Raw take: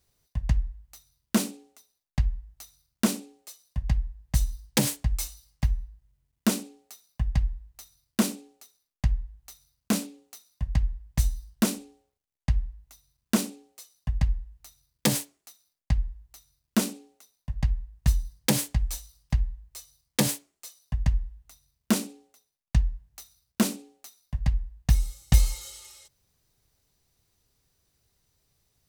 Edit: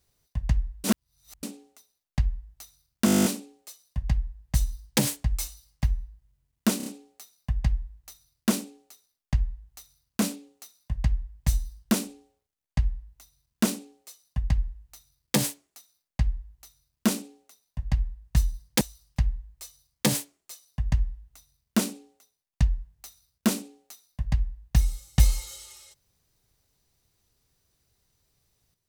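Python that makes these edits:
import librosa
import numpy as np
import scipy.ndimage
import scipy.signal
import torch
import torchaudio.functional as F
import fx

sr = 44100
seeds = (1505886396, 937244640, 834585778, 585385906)

y = fx.edit(x, sr, fx.reverse_span(start_s=0.84, length_s=0.59),
    fx.stutter(start_s=3.05, slice_s=0.02, count=11),
    fx.stutter(start_s=6.57, slice_s=0.03, count=4),
    fx.cut(start_s=18.52, length_s=0.43), tone=tone)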